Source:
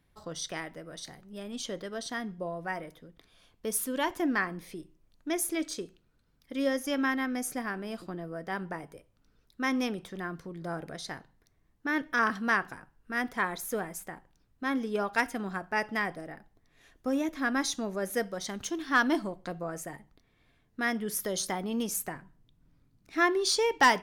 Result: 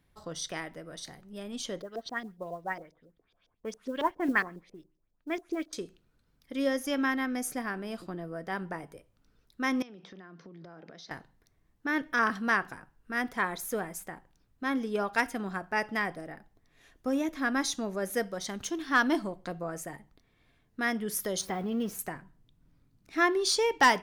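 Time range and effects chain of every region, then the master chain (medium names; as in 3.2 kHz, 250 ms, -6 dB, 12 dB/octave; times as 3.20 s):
1.82–5.73 s: LFO low-pass saw up 7.3 Hz 390–6100 Hz + modulation noise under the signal 31 dB + upward expansion, over -45 dBFS
9.82–11.11 s: Chebyshev band-pass 170–5800 Hz, order 4 + compression 16:1, threshold -44 dBFS
21.41–21.99 s: jump at every zero crossing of -40 dBFS + peaking EQ 8.2 kHz -13.5 dB 2 oct + comb of notches 300 Hz
whole clip: none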